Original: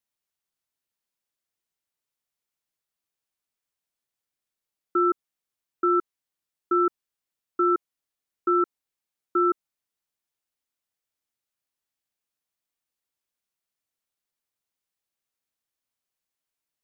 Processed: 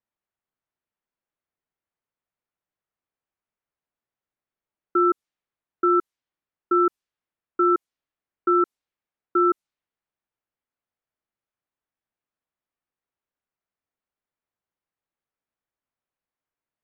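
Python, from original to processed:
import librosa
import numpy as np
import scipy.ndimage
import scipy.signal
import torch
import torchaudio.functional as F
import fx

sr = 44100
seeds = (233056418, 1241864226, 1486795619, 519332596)

y = fx.env_lowpass(x, sr, base_hz=1800.0, full_db=-21.0)
y = y * librosa.db_to_amplitude(2.5)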